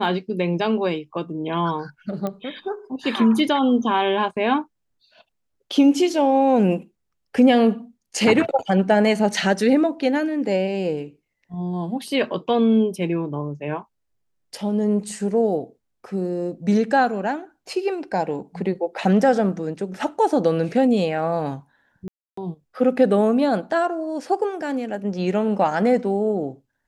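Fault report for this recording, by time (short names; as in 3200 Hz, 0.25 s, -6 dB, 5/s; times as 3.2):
2.27 pop -15 dBFS
22.08–22.37 gap 0.294 s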